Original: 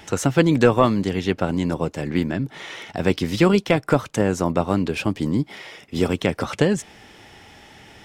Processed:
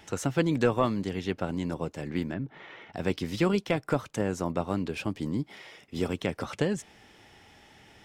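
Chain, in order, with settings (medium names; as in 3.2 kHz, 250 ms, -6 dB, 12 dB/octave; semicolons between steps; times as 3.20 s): 2.34–2.93 s: low-pass 2.3 kHz 12 dB/octave; trim -9 dB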